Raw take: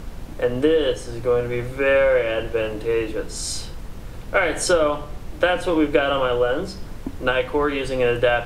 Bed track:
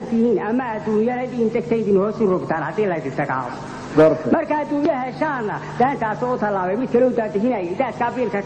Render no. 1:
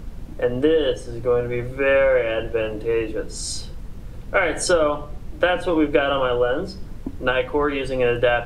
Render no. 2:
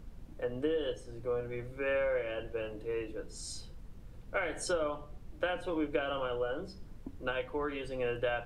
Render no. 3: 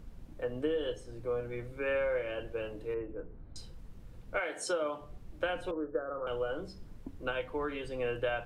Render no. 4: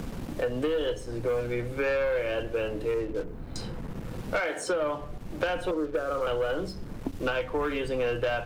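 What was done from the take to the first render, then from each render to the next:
noise reduction 7 dB, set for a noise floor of -35 dBFS
trim -14.5 dB
2.94–3.56 s: Gaussian low-pass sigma 5.1 samples; 4.39–5.01 s: high-pass 380 Hz -> 160 Hz; 5.71–6.27 s: rippled Chebyshev low-pass 1.8 kHz, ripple 9 dB
waveshaping leveller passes 2; three bands compressed up and down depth 70%

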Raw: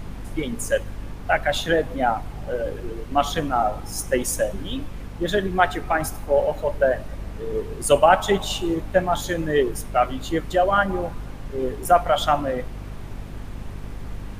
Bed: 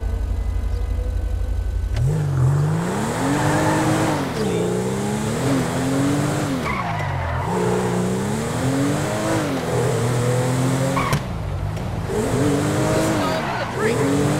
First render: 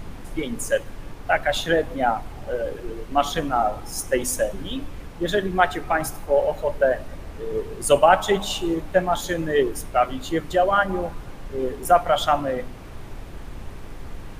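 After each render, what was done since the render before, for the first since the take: de-hum 50 Hz, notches 6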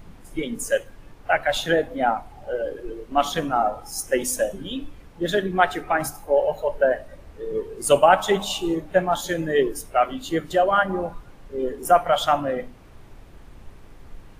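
noise print and reduce 9 dB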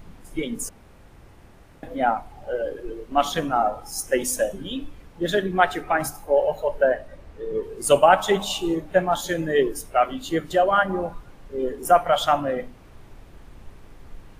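0.69–1.83 s: room tone; 6.91–7.63 s: treble shelf 7.3 kHz -6.5 dB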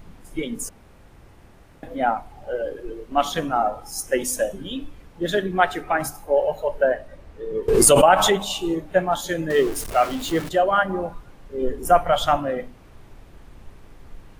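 7.68–8.47 s: swell ahead of each attack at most 26 dB/s; 9.50–10.49 s: jump at every zero crossing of -28.5 dBFS; 11.61–12.37 s: bass shelf 130 Hz +11.5 dB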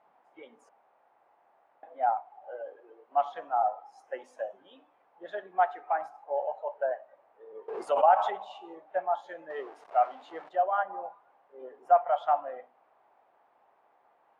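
ladder band-pass 870 Hz, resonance 55%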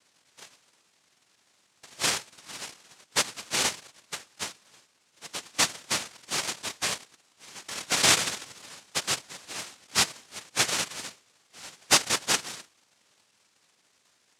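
median filter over 15 samples; noise-vocoded speech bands 1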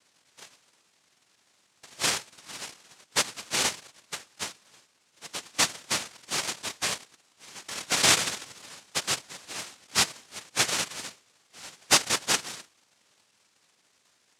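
no audible change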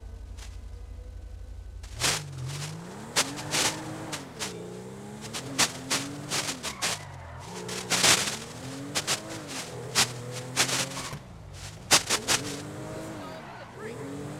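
add bed -19 dB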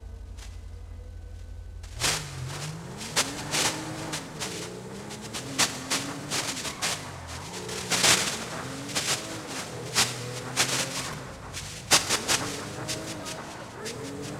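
echo whose repeats swap between lows and highs 485 ms, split 1.6 kHz, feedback 73%, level -10.5 dB; plate-style reverb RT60 2.7 s, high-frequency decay 0.55×, DRR 10.5 dB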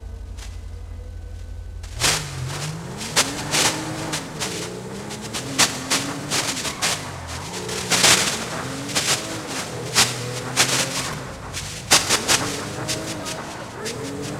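trim +7 dB; peak limiter -1 dBFS, peak gain reduction 2.5 dB

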